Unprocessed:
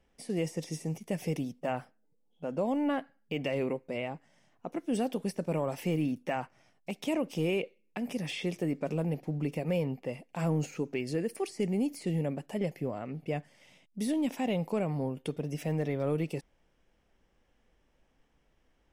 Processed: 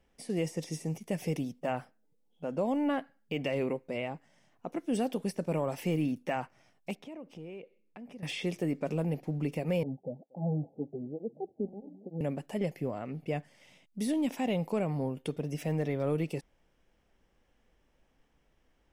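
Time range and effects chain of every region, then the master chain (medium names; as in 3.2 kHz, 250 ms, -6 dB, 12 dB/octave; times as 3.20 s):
6.95–8.23 s: low-pass 1.7 kHz 6 dB/octave + compression 2:1, threshold -53 dBFS
9.83–12.21 s: rippled Chebyshev low-pass 840 Hz, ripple 3 dB + delay 236 ms -23 dB + cancelling through-zero flanger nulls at 1.1 Hz, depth 6.5 ms
whole clip: none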